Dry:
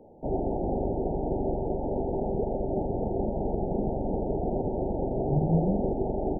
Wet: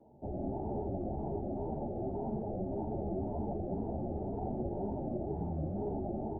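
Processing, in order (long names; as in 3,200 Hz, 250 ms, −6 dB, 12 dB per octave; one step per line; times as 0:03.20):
sub-octave generator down 1 octave, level −3 dB
automatic gain control gain up to 11.5 dB
brickwall limiter −21.5 dBFS, peak gain reduction 18 dB
notch comb filter 490 Hz
tape wow and flutter 110 cents
string-ensemble chorus
level −4 dB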